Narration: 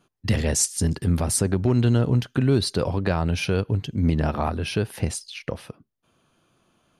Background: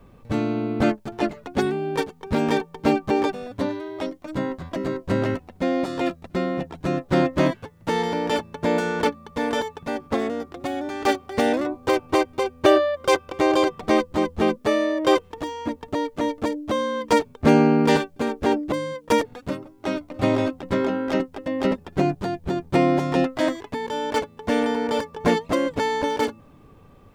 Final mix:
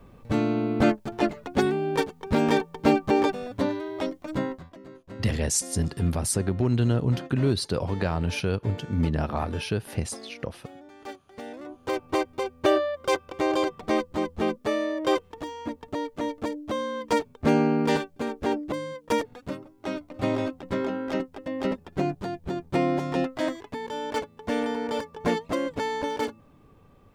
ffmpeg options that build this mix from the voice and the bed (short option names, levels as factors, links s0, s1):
-filter_complex "[0:a]adelay=4950,volume=0.668[s0];[1:a]volume=4.47,afade=t=out:st=4.34:d=0.41:silence=0.11885,afade=t=in:st=11.56:d=0.51:silence=0.211349[s1];[s0][s1]amix=inputs=2:normalize=0"